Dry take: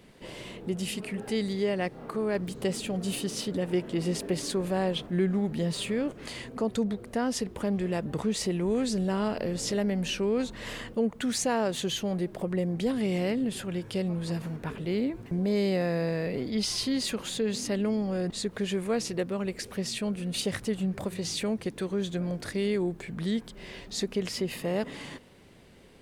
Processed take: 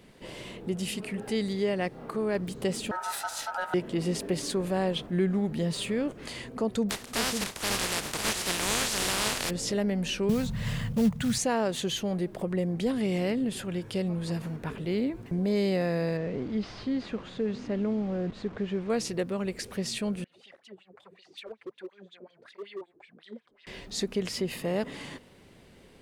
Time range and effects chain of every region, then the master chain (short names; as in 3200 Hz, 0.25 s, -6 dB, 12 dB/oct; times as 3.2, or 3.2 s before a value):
2.91–3.74 high shelf 8800 Hz +5.5 dB + ring modulator 1100 Hz
6.89–9.49 spectral contrast lowered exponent 0.2 + LPF 10000 Hz + echo 0.552 s -7 dB
10.29–11.38 HPF 44 Hz 6 dB/oct + short-mantissa float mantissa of 2-bit + resonant low shelf 220 Hz +13 dB, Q 3
16.17–18.9 delta modulation 64 kbps, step -36.5 dBFS + tape spacing loss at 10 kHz 33 dB
20.24–23.67 wah 5.4 Hz 360–3700 Hz, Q 4.3 + hard clip -33 dBFS + tape flanging out of phase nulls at 1.5 Hz, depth 6.5 ms
whole clip: dry